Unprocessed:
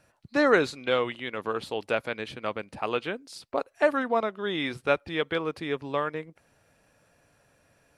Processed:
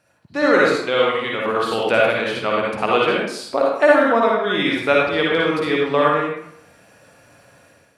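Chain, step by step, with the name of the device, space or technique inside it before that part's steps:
far laptop microphone (convolution reverb RT60 0.70 s, pre-delay 49 ms, DRR −3 dB; high-pass filter 130 Hz 6 dB per octave; automatic gain control gain up to 10 dB)

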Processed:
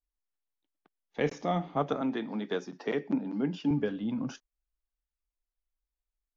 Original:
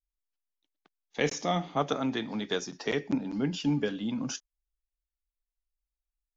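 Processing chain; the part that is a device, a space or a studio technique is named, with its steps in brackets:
through cloth (low-pass filter 6,700 Hz; high-shelf EQ 3,100 Hz −16 dB)
0:02.01–0:03.71: high-pass filter 160 Hz 24 dB per octave

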